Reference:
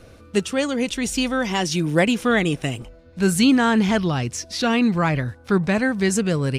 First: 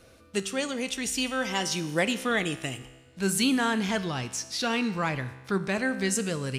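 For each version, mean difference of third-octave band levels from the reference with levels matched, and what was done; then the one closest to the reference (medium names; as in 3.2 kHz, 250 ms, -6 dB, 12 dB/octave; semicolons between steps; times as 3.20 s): 5.0 dB: tilt EQ +1.5 dB/octave; feedback comb 65 Hz, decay 1.2 s, harmonics all, mix 60%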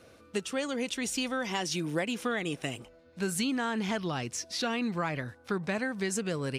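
3.0 dB: high-pass 280 Hz 6 dB/octave; compression, threshold -21 dBFS, peak gain reduction 7.5 dB; trim -6 dB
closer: second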